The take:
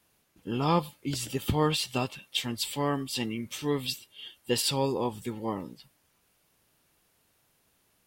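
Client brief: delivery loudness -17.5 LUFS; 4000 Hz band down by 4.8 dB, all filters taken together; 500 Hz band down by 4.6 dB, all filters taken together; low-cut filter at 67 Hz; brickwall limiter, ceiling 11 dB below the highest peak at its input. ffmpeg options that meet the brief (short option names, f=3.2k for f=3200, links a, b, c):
-af "highpass=67,equalizer=f=500:t=o:g=-5.5,equalizer=f=4k:t=o:g=-6,volume=19dB,alimiter=limit=-6dB:level=0:latency=1"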